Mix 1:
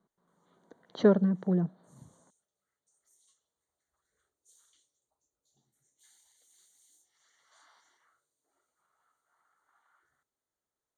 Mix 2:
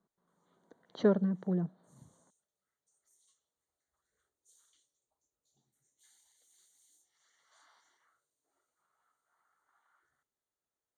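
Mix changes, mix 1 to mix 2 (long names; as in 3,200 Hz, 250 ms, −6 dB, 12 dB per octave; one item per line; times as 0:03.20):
speech −4.5 dB
background −3.0 dB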